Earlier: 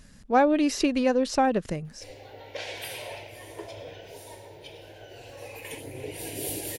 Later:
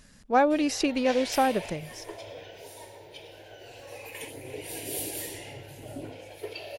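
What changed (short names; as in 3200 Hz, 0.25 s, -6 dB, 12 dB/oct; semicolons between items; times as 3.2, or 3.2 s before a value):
background: entry -1.50 s; master: add low shelf 290 Hz -5.5 dB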